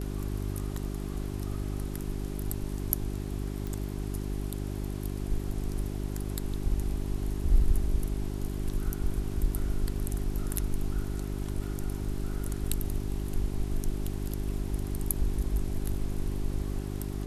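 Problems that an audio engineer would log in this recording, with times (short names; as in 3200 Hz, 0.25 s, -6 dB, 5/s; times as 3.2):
hum 50 Hz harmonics 8 -34 dBFS
3.67 pop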